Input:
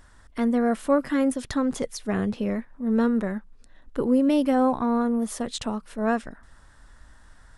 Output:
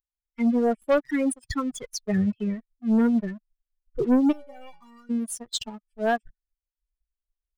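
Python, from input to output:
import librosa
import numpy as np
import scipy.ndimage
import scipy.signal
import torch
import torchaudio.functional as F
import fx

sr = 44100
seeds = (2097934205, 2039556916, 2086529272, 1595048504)

y = fx.bin_expand(x, sr, power=3.0)
y = fx.leveller(y, sr, passes=2)
y = fx.stiff_resonator(y, sr, f0_hz=170.0, decay_s=0.62, stiffness=0.03, at=(4.31, 5.09), fade=0.02)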